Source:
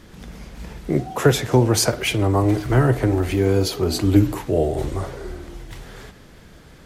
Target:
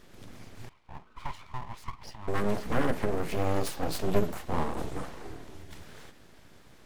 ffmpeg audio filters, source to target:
-filter_complex "[0:a]asettb=1/sr,asplit=3[s0][s1][s2];[s0]atrim=end=0.694[s3];[s1]atrim=start=0.69:end=2.28,asetpts=PTS-STARTPTS,afade=t=in:d=0.004:c=qsin,afade=t=out:st=1.586:d=0.004:c=qsin,asplit=3[s4][s5][s6];[s4]bandpass=f=530:t=q:w=8,volume=1[s7];[s5]bandpass=f=1840:t=q:w=8,volume=0.501[s8];[s6]bandpass=f=2480:t=q:w=8,volume=0.355[s9];[s7][s8][s9]amix=inputs=3:normalize=0[s10];[s2]atrim=start=2.276[s11];[s3][s10]acrossfade=d=0.004:c1=hsin:c2=qsin[s12];[s12][s11]acrossfade=d=0.004:c1=qsin:c2=hsin,aeval=exprs='abs(val(0))':c=same,volume=0.422"

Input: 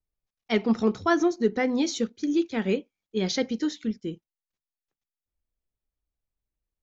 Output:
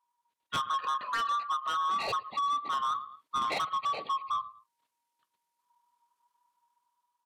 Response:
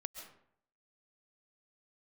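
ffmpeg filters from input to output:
-filter_complex "[0:a]afftfilt=real='real(if(lt(b,272),68*(eq(floor(b/68),0)*2+eq(floor(b/68),1)*0+eq(floor(b/68),2)*3+eq(floor(b/68),3)*1)+mod(b,68),b),0)':imag='imag(if(lt(b,272),68*(eq(floor(b/68),0)*2+eq(floor(b/68),1)*0+eq(floor(b/68),2)*3+eq(floor(b/68),3)*1)+mod(b,68),b),0)':win_size=2048:overlap=0.75,asetrate=30296,aresample=44100,atempo=1.45565,highpass=110,asplit=2[s0][s1];[s1]adelay=104,lowpass=f=4300:p=1,volume=0.0794,asplit=2[s2][s3];[s3]adelay=104,lowpass=f=4300:p=1,volume=0.25[s4];[s0][s2][s4]amix=inputs=3:normalize=0,acrossover=split=160[s5][s6];[s6]dynaudnorm=f=180:g=9:m=1.78[s7];[s5][s7]amix=inputs=2:normalize=0,asetrate=41454,aresample=44100,acompressor=threshold=0.0501:ratio=6,asoftclip=type=tanh:threshold=0.0282,adynamicequalizer=threshold=0.00398:dfrequency=2500:dqfactor=0.7:tfrequency=2500:tqfactor=0.7:attack=5:release=100:ratio=0.375:range=2.5:mode=cutabove:tftype=highshelf,volume=1.68"

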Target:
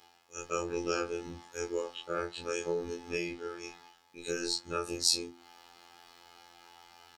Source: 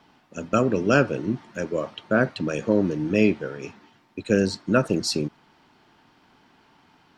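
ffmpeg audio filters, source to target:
-filter_complex "[0:a]afftfilt=real='re':imag='-im':win_size=2048:overlap=0.75,bandreject=f=50:t=h:w=6,bandreject=f=100:t=h:w=6,bandreject=f=150:t=h:w=6,bandreject=f=200:t=h:w=6,bandreject=f=250:t=h:w=6,bandreject=f=300:t=h:w=6,bandreject=f=350:t=h:w=6,bandreject=f=400:t=h:w=6,bandreject=f=450:t=h:w=6,afreqshift=-64,alimiter=limit=0.119:level=0:latency=1:release=220,areverse,acompressor=mode=upward:threshold=0.00501:ratio=2.5,areverse,afftfilt=real='hypot(re,im)*cos(PI*b)':imag='0':win_size=2048:overlap=0.75,bass=f=250:g=-13,treble=f=4000:g=11,asplit=2[s0][s1];[s1]adelay=14,volume=0.75[s2];[s0][s2]amix=inputs=2:normalize=0"

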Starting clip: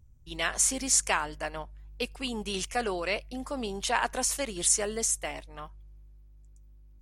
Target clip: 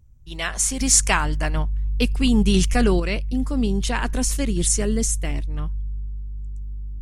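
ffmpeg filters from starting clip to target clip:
-filter_complex "[0:a]asubboost=boost=11.5:cutoff=220,asettb=1/sr,asplit=3[s0][s1][s2];[s0]atrim=end=0.804[s3];[s1]atrim=start=0.8:end=3,asetpts=PTS-STARTPTS,afade=t=in:d=0.004:c=qsin,afade=t=out:st=2.196:d=0.004:c=qsin,acontrast=30[s4];[s2]atrim=start=2.996[s5];[s3][s4]acrossfade=d=0.004:c1=hsin:c2=qsin[s6];[s6][s5]acrossfade=d=0.004:c1=qsin:c2=hsin,volume=1.41"

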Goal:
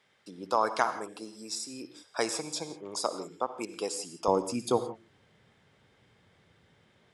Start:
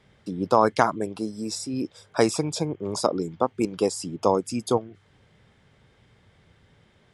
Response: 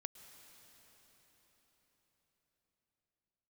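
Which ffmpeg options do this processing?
-filter_complex "[0:a]asetnsamples=n=441:p=0,asendcmd='4.28 highpass f 160',highpass=f=980:p=1[s0];[1:a]atrim=start_sample=2205,afade=t=out:st=0.41:d=0.01,atrim=end_sample=18522,asetrate=88200,aresample=44100[s1];[s0][s1]afir=irnorm=-1:irlink=0,volume=2.37"

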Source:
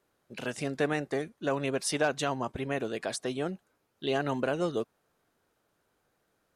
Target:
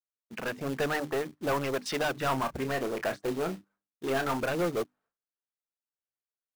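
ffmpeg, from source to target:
-filter_complex "[0:a]agate=range=0.0224:threshold=0.00112:ratio=3:detection=peak,bandreject=f=50:t=h:w=6,bandreject=f=100:t=h:w=6,bandreject=f=150:t=h:w=6,bandreject=f=200:t=h:w=6,bandreject=f=250:t=h:w=6,bandreject=f=300:t=h:w=6,afwtdn=0.0112,lowpass=4600,equalizer=f=1300:t=o:w=2:g=8,asoftclip=type=tanh:threshold=0.0398,aphaser=in_gain=1:out_gain=1:delay=4.7:decay=0.23:speed=1.3:type=sinusoidal,acrusher=bits=3:mode=log:mix=0:aa=0.000001,asettb=1/sr,asplit=3[s0][s1][s2];[s0]atrim=end=2.134[s3];[s1]atrim=start=2.13:end=4.4,asetpts=PTS-STARTPTS,afade=t=in:d=0.004:c=qsin,afade=t=out:st=2.266:d=0.004:c=qsin,asplit=2[s4][s5];[s5]adelay=30,volume=0.316[s6];[s4][s6]amix=inputs=2:normalize=0,atrim=end_sample=100107[s7];[s2]atrim=start=4.396[s8];[s3][s7]acrossfade=d=0.004:c1=hsin:c2=qsin[s9];[s9][s8]acrossfade=d=0.004:c1=qsin:c2=hsin,volume=1.26"

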